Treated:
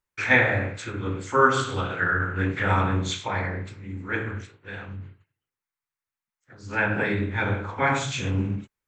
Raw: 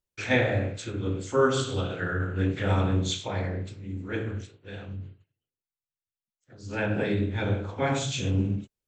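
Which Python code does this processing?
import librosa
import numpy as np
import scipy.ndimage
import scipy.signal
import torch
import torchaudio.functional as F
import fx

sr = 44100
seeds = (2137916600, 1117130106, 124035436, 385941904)

y = fx.band_shelf(x, sr, hz=1400.0, db=9.5, octaves=1.7)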